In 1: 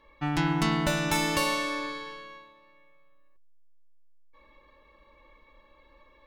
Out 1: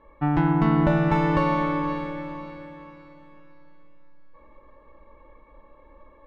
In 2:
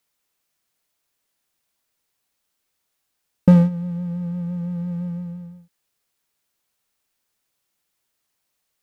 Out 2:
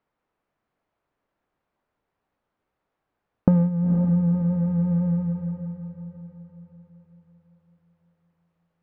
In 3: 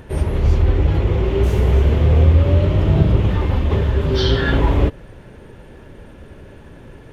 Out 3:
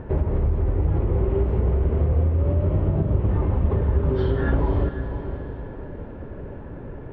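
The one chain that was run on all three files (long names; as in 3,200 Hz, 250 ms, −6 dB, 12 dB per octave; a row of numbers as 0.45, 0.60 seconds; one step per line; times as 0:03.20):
low-pass filter 1,200 Hz 12 dB per octave
downward compressor 6 to 1, threshold −22 dBFS
on a send: feedback delay with all-pass diffusion 500 ms, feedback 41%, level −9 dB
on the sum: loudness normalisation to −23 LKFS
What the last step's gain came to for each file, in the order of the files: +7.0, +6.5, +3.5 decibels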